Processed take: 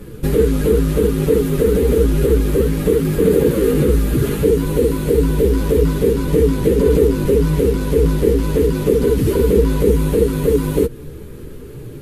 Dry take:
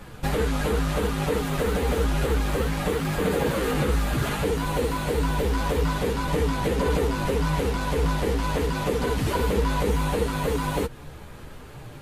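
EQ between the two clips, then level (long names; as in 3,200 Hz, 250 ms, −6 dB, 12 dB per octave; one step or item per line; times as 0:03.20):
low shelf with overshoot 550 Hz +9 dB, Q 3
parametric band 12,000 Hz +11 dB 0.79 octaves
−1.0 dB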